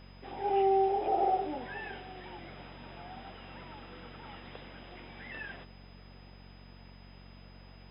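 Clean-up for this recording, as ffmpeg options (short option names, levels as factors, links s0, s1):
-af "bandreject=f=46.4:t=h:w=4,bandreject=f=92.8:t=h:w=4,bandreject=f=139.2:t=h:w=4,bandreject=f=185.6:t=h:w=4,bandreject=f=232:t=h:w=4,bandreject=f=5000:w=30"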